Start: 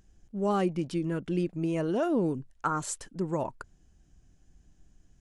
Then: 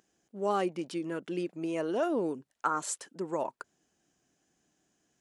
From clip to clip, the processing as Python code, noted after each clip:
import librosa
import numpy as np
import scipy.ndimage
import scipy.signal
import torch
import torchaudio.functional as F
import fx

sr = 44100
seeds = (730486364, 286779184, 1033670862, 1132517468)

y = scipy.signal.sosfilt(scipy.signal.butter(2, 340.0, 'highpass', fs=sr, output='sos'), x)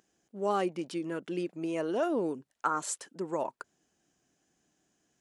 y = x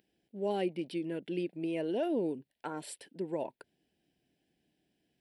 y = fx.fixed_phaser(x, sr, hz=2900.0, stages=4)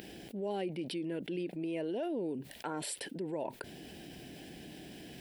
y = fx.env_flatten(x, sr, amount_pct=70)
y = F.gain(torch.from_numpy(y), -5.5).numpy()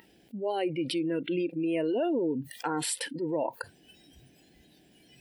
y = fx.noise_reduce_blind(x, sr, reduce_db=20)
y = F.gain(torch.from_numpy(y), 8.0).numpy()